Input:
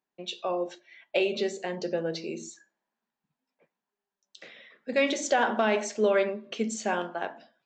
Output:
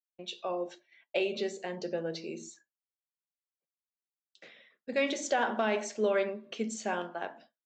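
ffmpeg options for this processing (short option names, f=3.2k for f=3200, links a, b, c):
-af "agate=range=-33dB:threshold=-47dB:ratio=3:detection=peak,volume=-4.5dB"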